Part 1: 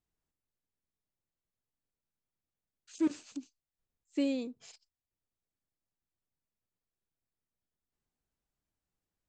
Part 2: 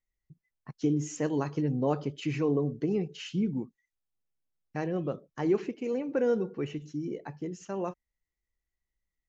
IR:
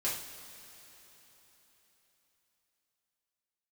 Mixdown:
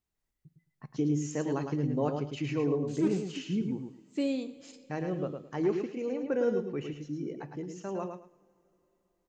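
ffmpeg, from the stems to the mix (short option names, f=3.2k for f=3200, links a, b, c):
-filter_complex "[0:a]volume=-1dB,asplit=2[a][b];[b]volume=-12dB[c];[1:a]adelay=150,volume=-3dB,asplit=3[d][e][f];[e]volume=-21.5dB[g];[f]volume=-5.5dB[h];[2:a]atrim=start_sample=2205[i];[c][g]amix=inputs=2:normalize=0[j];[j][i]afir=irnorm=-1:irlink=0[k];[h]aecho=0:1:108|216|324:1|0.2|0.04[l];[a][d][k][l]amix=inputs=4:normalize=0"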